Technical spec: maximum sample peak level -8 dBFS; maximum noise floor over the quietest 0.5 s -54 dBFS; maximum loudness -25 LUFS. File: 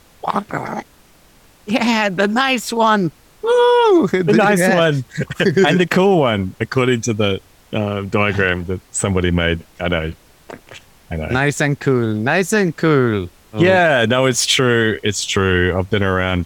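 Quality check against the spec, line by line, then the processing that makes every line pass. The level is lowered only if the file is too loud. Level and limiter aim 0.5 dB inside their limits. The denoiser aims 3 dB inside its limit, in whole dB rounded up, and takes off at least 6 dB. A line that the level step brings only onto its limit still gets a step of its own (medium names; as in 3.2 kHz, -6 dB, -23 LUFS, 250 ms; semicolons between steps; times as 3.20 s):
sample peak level -3.0 dBFS: fail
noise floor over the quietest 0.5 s -49 dBFS: fail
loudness -16.0 LUFS: fail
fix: trim -9.5 dB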